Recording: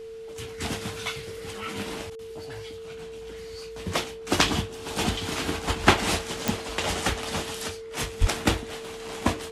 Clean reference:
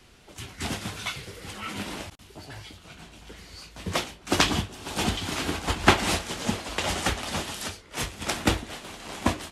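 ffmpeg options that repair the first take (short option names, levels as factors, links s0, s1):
-filter_complex "[0:a]adeclick=t=4,bandreject=f=450:w=30,asplit=3[s0][s1][s2];[s0]afade=t=out:st=8.2:d=0.02[s3];[s1]highpass=f=140:w=0.5412,highpass=f=140:w=1.3066,afade=t=in:st=8.2:d=0.02,afade=t=out:st=8.32:d=0.02[s4];[s2]afade=t=in:st=8.32:d=0.02[s5];[s3][s4][s5]amix=inputs=3:normalize=0"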